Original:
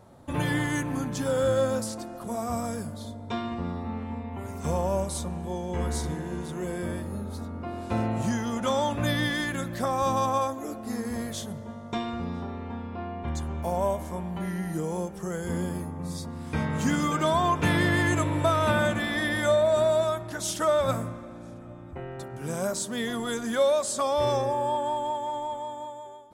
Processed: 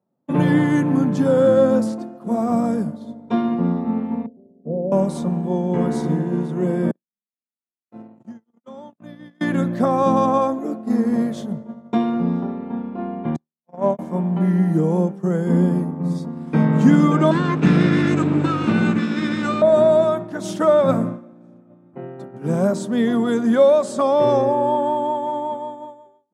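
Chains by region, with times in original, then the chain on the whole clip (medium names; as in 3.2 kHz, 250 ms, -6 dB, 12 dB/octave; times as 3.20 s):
4.26–4.92 s: steep low-pass 600 Hz 48 dB/octave + tilt EQ +3 dB/octave
6.91–9.41 s: gate -27 dBFS, range -53 dB + compression 3:1, threshold -40 dBFS
13.36–13.99 s: low-pass 11 kHz + gate -26 dBFS, range -42 dB + decimation joined by straight lines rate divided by 3×
17.31–19.62 s: comb filter that takes the minimum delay 0.78 ms + steep low-pass 8.9 kHz 48 dB/octave + peaking EQ 930 Hz -7.5 dB 0.63 oct
whole clip: expander -31 dBFS; steep high-pass 160 Hz 36 dB/octave; tilt EQ -4 dB/octave; trim +6 dB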